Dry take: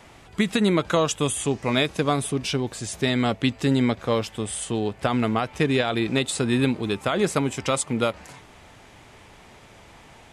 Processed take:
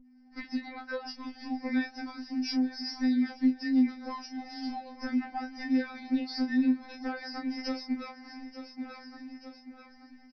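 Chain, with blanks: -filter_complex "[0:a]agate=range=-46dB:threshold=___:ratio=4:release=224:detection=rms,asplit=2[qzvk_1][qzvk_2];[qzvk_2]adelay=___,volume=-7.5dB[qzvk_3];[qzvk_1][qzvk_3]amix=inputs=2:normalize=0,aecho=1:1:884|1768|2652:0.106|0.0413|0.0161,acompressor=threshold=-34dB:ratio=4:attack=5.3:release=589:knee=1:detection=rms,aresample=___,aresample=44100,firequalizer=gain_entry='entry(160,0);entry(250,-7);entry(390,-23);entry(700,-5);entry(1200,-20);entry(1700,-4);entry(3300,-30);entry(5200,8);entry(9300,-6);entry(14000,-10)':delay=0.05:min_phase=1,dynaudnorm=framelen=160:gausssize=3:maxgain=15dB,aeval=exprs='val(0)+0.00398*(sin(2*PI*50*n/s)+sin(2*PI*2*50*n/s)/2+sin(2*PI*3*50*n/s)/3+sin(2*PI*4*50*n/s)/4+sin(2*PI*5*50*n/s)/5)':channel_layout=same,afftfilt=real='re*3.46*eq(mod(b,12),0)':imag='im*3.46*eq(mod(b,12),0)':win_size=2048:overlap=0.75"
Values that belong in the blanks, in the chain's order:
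-41dB, 31, 11025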